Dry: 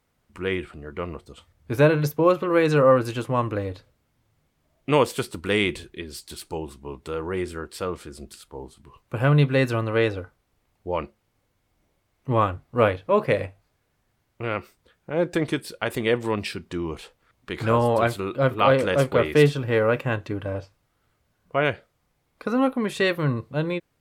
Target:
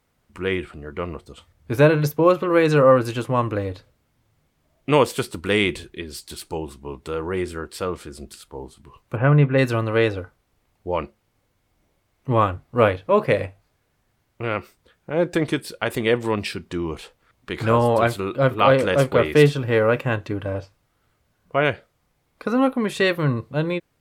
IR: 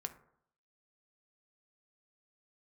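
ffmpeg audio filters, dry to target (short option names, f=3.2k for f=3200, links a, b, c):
-filter_complex "[0:a]asplit=3[a][b][c];[a]afade=t=out:st=9.15:d=0.02[d];[b]lowpass=f=2.4k:w=0.5412,lowpass=f=2.4k:w=1.3066,afade=t=in:st=9.15:d=0.02,afade=t=out:st=9.57:d=0.02[e];[c]afade=t=in:st=9.57:d=0.02[f];[d][e][f]amix=inputs=3:normalize=0,volume=2.5dB"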